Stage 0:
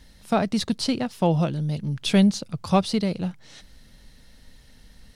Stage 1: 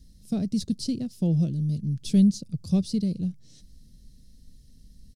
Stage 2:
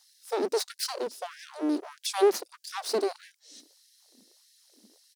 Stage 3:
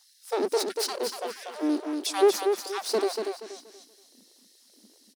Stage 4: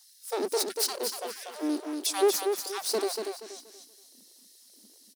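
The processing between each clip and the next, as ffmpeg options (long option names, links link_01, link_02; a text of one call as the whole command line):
ffmpeg -i in.wav -af "firequalizer=gain_entry='entry(180,0);entry(900,-29);entry(5000,-5)':delay=0.05:min_phase=1" out.wav
ffmpeg -i in.wav -af "asubboost=boost=2:cutoff=140,aeval=exprs='abs(val(0))':channel_layout=same,afftfilt=real='re*gte(b*sr/1024,210*pow(1600/210,0.5+0.5*sin(2*PI*1.6*pts/sr)))':imag='im*gte(b*sr/1024,210*pow(1600/210,0.5+0.5*sin(2*PI*1.6*pts/sr)))':win_size=1024:overlap=0.75,volume=6.5dB" out.wav
ffmpeg -i in.wav -af "aecho=1:1:238|476|714|952:0.531|0.154|0.0446|0.0129,volume=1.5dB" out.wav
ffmpeg -i in.wav -af "crystalizer=i=1.5:c=0,volume=-3.5dB" out.wav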